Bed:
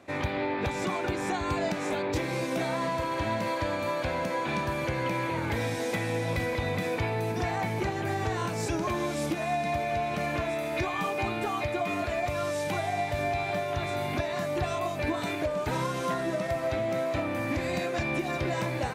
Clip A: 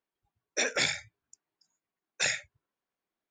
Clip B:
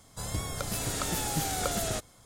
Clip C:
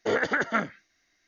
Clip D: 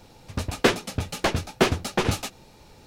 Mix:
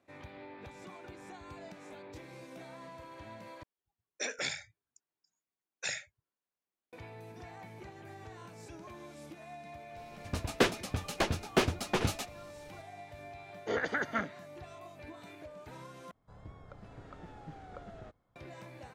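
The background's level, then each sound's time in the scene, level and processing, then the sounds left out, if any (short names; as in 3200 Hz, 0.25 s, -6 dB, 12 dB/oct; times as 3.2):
bed -19 dB
3.63 replace with A -8 dB
9.96 add D -7 dB
13.61 add C -7.5 dB, fades 0.10 s
16.11 replace with B -15.5 dB + LPF 1600 Hz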